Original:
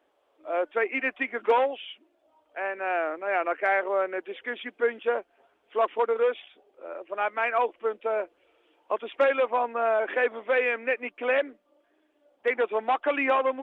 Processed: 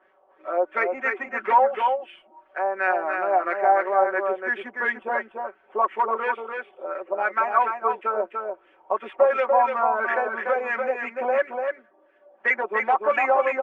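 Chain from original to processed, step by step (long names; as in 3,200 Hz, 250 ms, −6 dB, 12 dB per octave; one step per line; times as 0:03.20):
running median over 9 samples
high-shelf EQ 2,400 Hz +10.5 dB
comb filter 5.3 ms, depth 91%
in parallel at +3 dB: downward compressor, threshold −33 dBFS, peak gain reduction 19 dB
on the sum: auto-filter low-pass sine 2.9 Hz 810–1,900 Hz
on a send: single-tap delay 292 ms −5 dB
on the sum: level −6 dB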